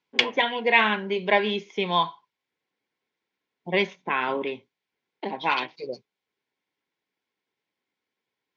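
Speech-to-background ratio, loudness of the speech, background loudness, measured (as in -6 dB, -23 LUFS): 1.5 dB, -25.0 LUFS, -26.5 LUFS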